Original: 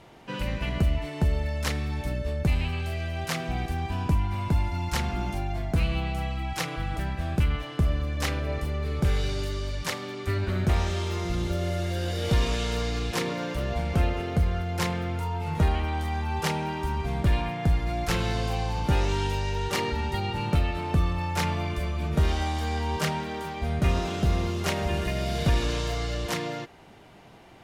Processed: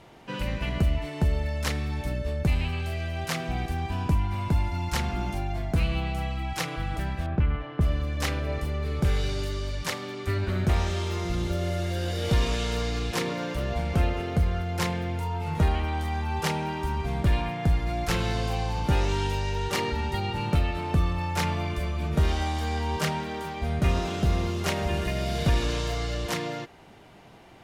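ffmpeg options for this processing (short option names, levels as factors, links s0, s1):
-filter_complex "[0:a]asettb=1/sr,asplit=3[s0][s1][s2];[s0]atrim=end=7.264[s3];[s1]atrim=start=7.26:end=7.81,asetpts=PTS-STARTPTS,afade=t=in:d=0.004:c=qsin,afade=t=out:st=0.546:d=0.004:c=qsin,lowpass=1900[s4];[s2]atrim=start=7.806[s5];[s3][s4]acrossfade=d=0.004:c1=hsin:c2=qsin[s6];[s6][s5]acrossfade=d=0.004:c1=qsin:c2=hsin,asettb=1/sr,asplit=3[s7][s8][s9];[s7]atrim=end=14.894[s10];[s8]atrim=start=14.89:end=15.3,asetpts=PTS-STARTPTS,afade=t=in:d=0.004:c=qsin,afade=t=out:st=0.406:d=0.004:c=qsin,bandreject=f=1300:w=6[s11];[s9]atrim=start=15.296[s12];[s10][s11]acrossfade=d=0.004:c1=hsin:c2=qsin[s13];[s13][s12]acrossfade=d=0.004:c1=qsin:c2=hsin"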